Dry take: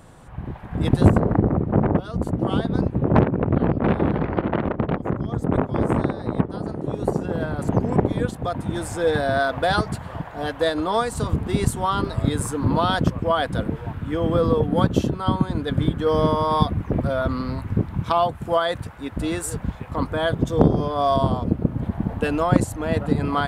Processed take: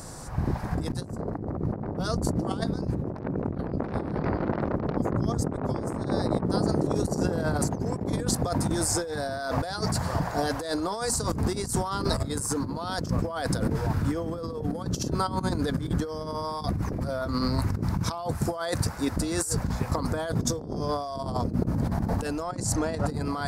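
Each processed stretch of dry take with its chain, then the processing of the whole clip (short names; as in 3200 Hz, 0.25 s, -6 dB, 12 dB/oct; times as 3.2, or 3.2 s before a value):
22.42–23.07 LPF 8800 Hz + notches 50/100/150/200 Hz
whole clip: resonant high shelf 4000 Hz +8 dB, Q 3; notches 60/120/180/240 Hz; negative-ratio compressor -29 dBFS, ratio -1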